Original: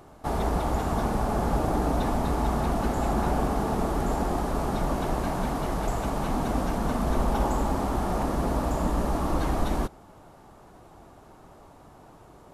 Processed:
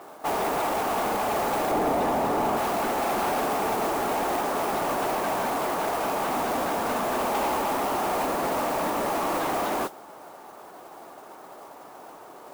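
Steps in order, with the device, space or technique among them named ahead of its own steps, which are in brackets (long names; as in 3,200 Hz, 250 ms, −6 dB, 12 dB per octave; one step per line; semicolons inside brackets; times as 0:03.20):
carbon microphone (band-pass filter 420–2,700 Hz; soft clipping −31.5 dBFS, distortion −11 dB; noise that follows the level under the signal 13 dB)
0:01.71–0:02.57: tilt shelving filter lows +4.5 dB, about 1,100 Hz
level +9 dB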